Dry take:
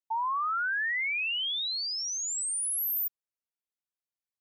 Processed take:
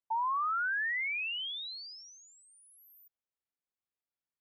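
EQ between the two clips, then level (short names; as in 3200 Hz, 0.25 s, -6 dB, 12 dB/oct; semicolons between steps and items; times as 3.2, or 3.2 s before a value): air absorption 330 m; 0.0 dB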